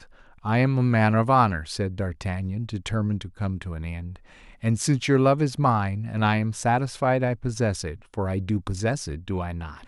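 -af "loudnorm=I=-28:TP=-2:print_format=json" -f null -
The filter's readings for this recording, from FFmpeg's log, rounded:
"input_i" : "-25.3",
"input_tp" : "-5.6",
"input_lra" : "4.0",
"input_thresh" : "-35.5",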